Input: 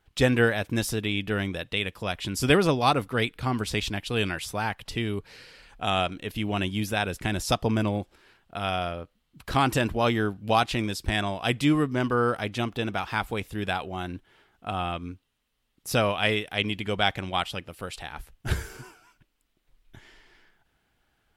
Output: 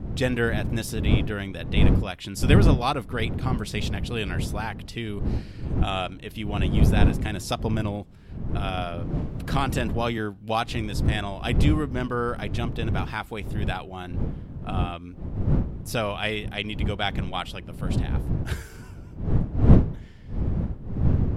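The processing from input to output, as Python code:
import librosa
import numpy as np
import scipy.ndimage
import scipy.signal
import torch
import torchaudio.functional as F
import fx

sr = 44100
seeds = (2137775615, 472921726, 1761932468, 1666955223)

y = fx.dmg_wind(x, sr, seeds[0], corner_hz=140.0, level_db=-22.0)
y = fx.band_squash(y, sr, depth_pct=40, at=(8.77, 10.18))
y = y * 10.0 ** (-3.0 / 20.0)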